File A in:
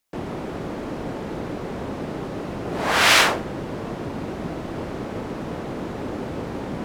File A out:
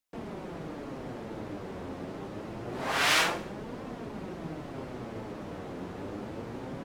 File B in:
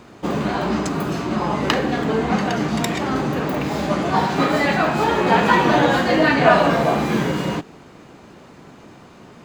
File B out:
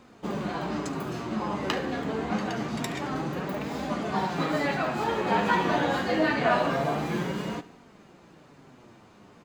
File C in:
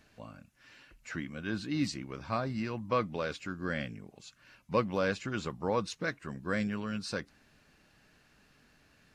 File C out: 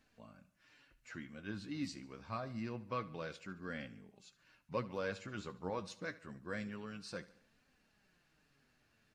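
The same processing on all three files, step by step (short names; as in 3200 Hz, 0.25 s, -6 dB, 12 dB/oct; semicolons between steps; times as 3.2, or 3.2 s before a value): flange 0.26 Hz, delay 3.7 ms, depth 7.7 ms, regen +51%; feedback echo 72 ms, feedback 51%, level -18 dB; gain -5.5 dB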